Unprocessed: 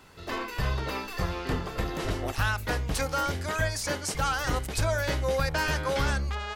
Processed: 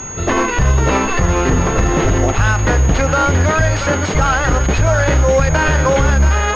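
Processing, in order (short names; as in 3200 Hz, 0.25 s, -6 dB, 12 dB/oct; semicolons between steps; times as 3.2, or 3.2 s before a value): low shelf 390 Hz +5 dB; compressor 2.5:1, threshold -29 dBFS, peak gain reduction 8 dB; thinning echo 0.679 s, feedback 61%, level -10 dB; maximiser +23 dB; pulse-width modulation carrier 6600 Hz; gain -3.5 dB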